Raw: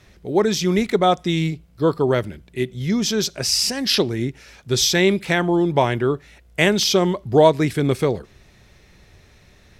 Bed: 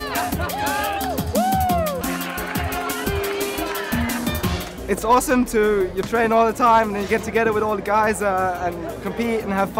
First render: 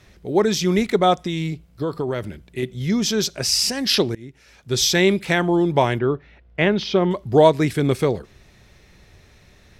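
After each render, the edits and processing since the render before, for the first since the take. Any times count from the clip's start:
0:01.25–0:02.63: downward compressor, threshold −20 dBFS
0:04.15–0:04.90: fade in, from −23 dB
0:05.99–0:07.11: high-frequency loss of the air 290 metres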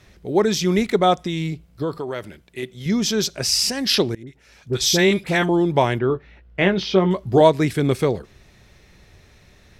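0:01.98–0:02.86: low-shelf EQ 290 Hz −10.5 dB
0:04.23–0:05.49: all-pass dispersion highs, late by 43 ms, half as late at 1,200 Hz
0:06.08–0:07.41: double-tracking delay 16 ms −7 dB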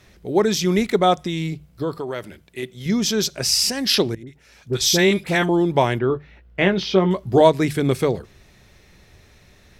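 high-shelf EQ 11,000 Hz +5 dB
mains-hum notches 50/100/150 Hz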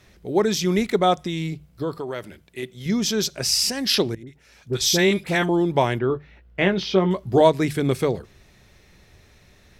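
level −2 dB

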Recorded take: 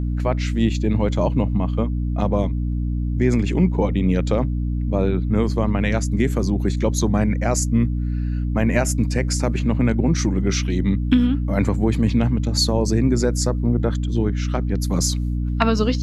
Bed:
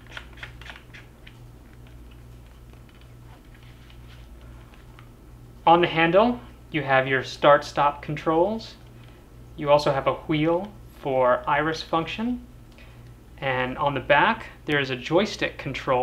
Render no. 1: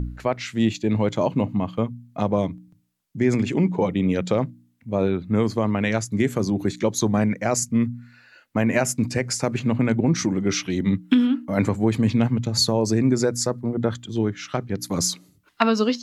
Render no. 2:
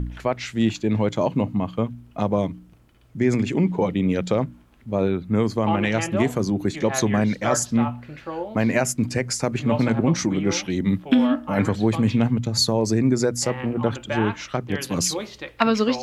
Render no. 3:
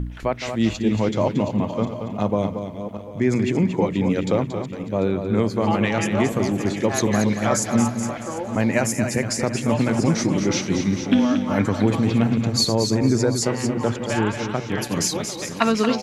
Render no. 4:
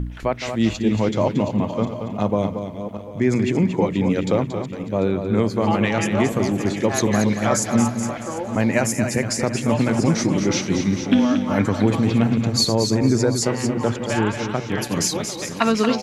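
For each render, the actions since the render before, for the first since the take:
hum removal 60 Hz, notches 5
mix in bed −9.5 dB
feedback delay that plays each chunk backwards 372 ms, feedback 47%, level −10.5 dB; repeating echo 229 ms, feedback 22%, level −8 dB
level +1 dB; brickwall limiter −3 dBFS, peak gain reduction 1.5 dB

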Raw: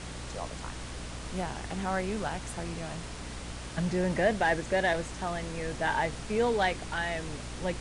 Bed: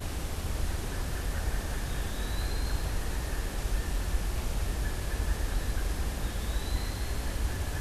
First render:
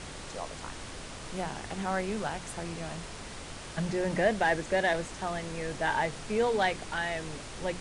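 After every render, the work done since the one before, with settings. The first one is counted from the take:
mains-hum notches 60/120/180/240/300 Hz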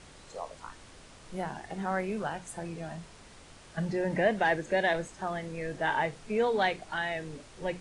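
noise reduction from a noise print 10 dB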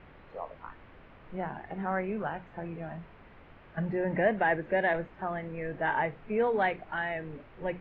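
inverse Chebyshev low-pass filter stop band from 9,500 Hz, stop band 70 dB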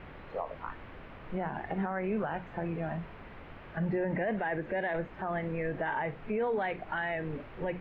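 in parallel at −0.5 dB: downward compressor, threshold −37 dBFS, peak gain reduction 15.5 dB
on the sum: brickwall limiter −24 dBFS, peak gain reduction 11 dB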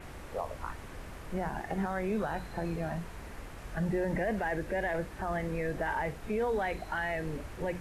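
mix in bed −14.5 dB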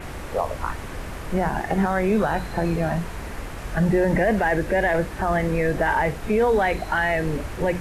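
level +11.5 dB

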